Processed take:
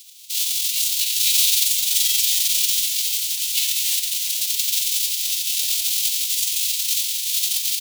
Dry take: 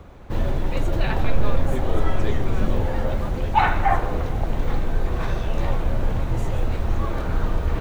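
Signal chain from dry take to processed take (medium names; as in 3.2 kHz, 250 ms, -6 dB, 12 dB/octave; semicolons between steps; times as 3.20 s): formants flattened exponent 0.3; inverse Chebyshev high-pass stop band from 1.6 kHz, stop band 40 dB; frequency-shifting echo 348 ms, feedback 58%, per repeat -68 Hz, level -10 dB; trim +1.5 dB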